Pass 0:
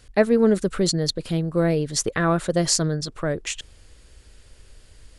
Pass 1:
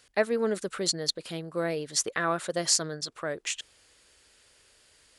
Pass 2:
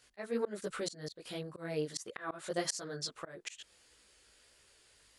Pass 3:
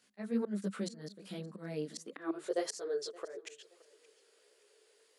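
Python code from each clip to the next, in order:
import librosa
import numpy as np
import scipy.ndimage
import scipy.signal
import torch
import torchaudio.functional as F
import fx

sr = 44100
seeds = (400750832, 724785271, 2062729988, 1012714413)

y1 = fx.highpass(x, sr, hz=760.0, slope=6)
y1 = y1 * librosa.db_to_amplitude(-2.5)
y2 = fx.chorus_voices(y1, sr, voices=2, hz=1.4, base_ms=17, depth_ms=3.0, mix_pct=50)
y2 = fx.auto_swell(y2, sr, attack_ms=239.0)
y2 = y2 * librosa.db_to_amplitude(-1.0)
y3 = fx.filter_sweep_highpass(y2, sr, from_hz=200.0, to_hz=430.0, start_s=1.86, end_s=2.55, q=7.8)
y3 = fx.echo_feedback(y3, sr, ms=572, feedback_pct=29, wet_db=-22.5)
y3 = y3 * librosa.db_to_amplitude(-5.5)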